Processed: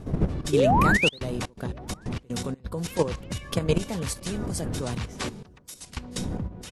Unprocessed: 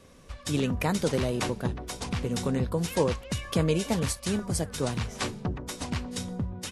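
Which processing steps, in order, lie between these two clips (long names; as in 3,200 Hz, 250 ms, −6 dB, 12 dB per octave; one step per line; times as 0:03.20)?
wind on the microphone 220 Hz −32 dBFS
0:00.52–0:01.20: sound drawn into the spectrogram rise 370–4,500 Hz −23 dBFS
0:05.43–0:05.97: first-order pre-emphasis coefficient 0.9
output level in coarse steps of 11 dB
0:01.03–0:02.64: gate pattern ".xx.xxx.x" 124 BPM −24 dB
slap from a distant wall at 190 metres, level −30 dB
level +3.5 dB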